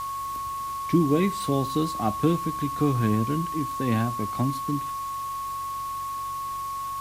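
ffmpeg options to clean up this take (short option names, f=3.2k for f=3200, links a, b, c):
-af "adeclick=t=4,bandreject=f=46.5:t=h:w=4,bandreject=f=93:t=h:w=4,bandreject=f=139.5:t=h:w=4,bandreject=f=1.1k:w=30,afwtdn=0.0056"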